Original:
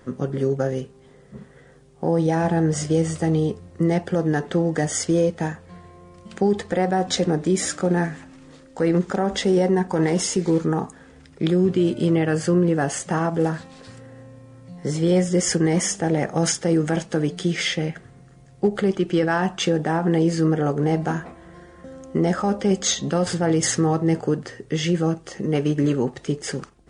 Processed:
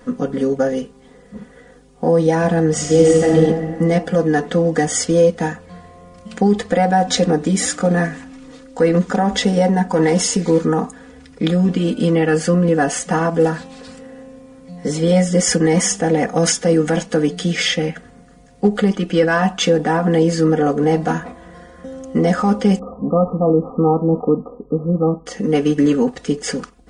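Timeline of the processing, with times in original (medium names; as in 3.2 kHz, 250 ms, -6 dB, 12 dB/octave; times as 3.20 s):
2.78–3.30 s: reverb throw, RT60 2.4 s, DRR -1.5 dB
22.79–25.26 s: brick-wall FIR low-pass 1.3 kHz
whole clip: comb 4.1 ms, depth 96%; trim +3 dB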